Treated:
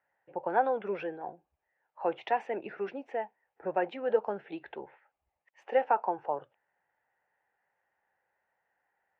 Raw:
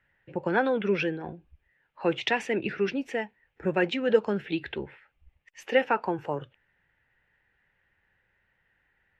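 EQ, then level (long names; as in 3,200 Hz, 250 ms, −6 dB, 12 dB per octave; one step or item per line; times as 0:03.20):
resonant band-pass 760 Hz, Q 2.5
+3.5 dB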